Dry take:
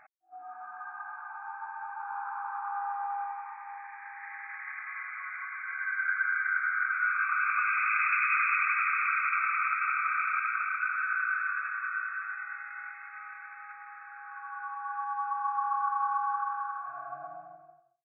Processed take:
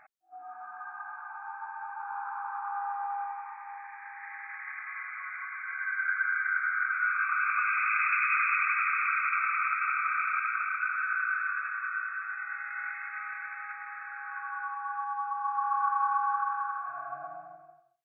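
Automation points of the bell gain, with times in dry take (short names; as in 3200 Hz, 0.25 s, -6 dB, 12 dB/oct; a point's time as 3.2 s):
bell 2000 Hz 1.6 oct
12.24 s 0 dB
12.94 s +8 dB
14.41 s +8 dB
15.34 s -3 dB
15.83 s +4.5 dB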